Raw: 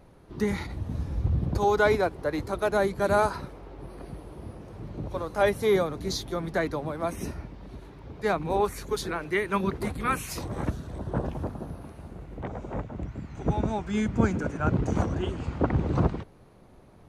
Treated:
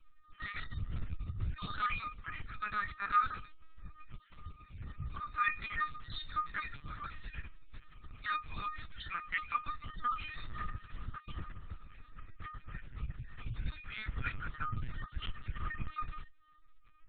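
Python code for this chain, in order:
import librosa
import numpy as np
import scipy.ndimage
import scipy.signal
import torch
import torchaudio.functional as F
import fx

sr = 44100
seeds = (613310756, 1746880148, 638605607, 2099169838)

y = fx.spec_dropout(x, sr, seeds[0], share_pct=23)
y = scipy.signal.sosfilt(scipy.signal.cheby1(4, 1.0, [140.0, 1200.0], 'bandstop', fs=sr, output='sos'), y)
y = fx.over_compress(y, sr, threshold_db=-29.0, ratio=-0.5)
y = fx.comb_fb(y, sr, f0_hz=610.0, decay_s=0.22, harmonics='all', damping=0.0, mix_pct=90)
y = fx.lpc_vocoder(y, sr, seeds[1], excitation='pitch_kept', order=10)
y = y * librosa.db_to_amplitude(13.0)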